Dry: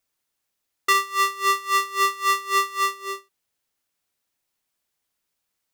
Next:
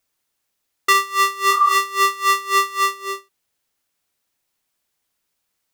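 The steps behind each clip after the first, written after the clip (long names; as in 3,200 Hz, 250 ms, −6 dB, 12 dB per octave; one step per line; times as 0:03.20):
healed spectral selection 0:01.54–0:01.75, 720–1,500 Hz
level +4 dB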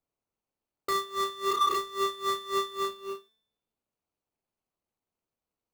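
running median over 25 samples
high-shelf EQ 6,800 Hz +5 dB
tuned comb filter 220 Hz, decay 0.75 s, harmonics all, mix 50%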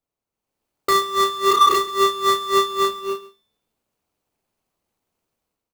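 automatic gain control gain up to 10.5 dB
single-tap delay 137 ms −18.5 dB
level +1 dB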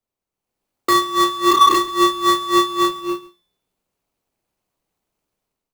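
frequency shifter −40 Hz
in parallel at −10 dB: slack as between gear wheels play −29 dBFS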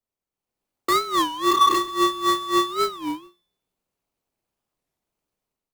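wow of a warped record 33 1/3 rpm, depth 250 cents
level −5 dB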